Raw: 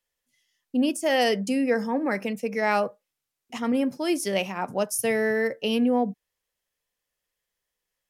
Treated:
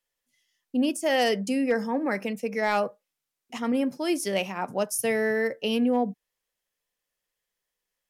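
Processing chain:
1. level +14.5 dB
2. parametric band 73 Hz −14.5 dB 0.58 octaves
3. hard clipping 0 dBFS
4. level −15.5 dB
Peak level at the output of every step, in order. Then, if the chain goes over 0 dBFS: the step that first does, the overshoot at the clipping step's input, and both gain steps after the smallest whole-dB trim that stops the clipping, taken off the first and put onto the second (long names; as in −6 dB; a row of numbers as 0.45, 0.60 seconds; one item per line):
+4.0, +4.0, 0.0, −15.5 dBFS
step 1, 4.0 dB
step 1 +10.5 dB, step 4 −11.5 dB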